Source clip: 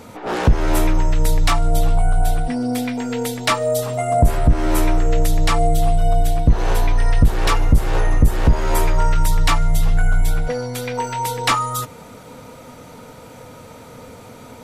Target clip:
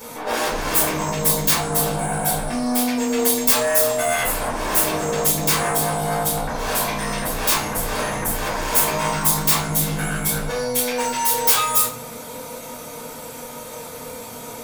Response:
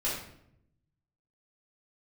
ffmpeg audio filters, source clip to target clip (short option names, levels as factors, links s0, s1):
-filter_complex "[0:a]aeval=exprs='0.562*sin(PI/2*5.01*val(0)/0.562)':c=same,aemphasis=mode=production:type=bsi[s0];[1:a]atrim=start_sample=2205,asetrate=79380,aresample=44100[s1];[s0][s1]afir=irnorm=-1:irlink=0,volume=0.168"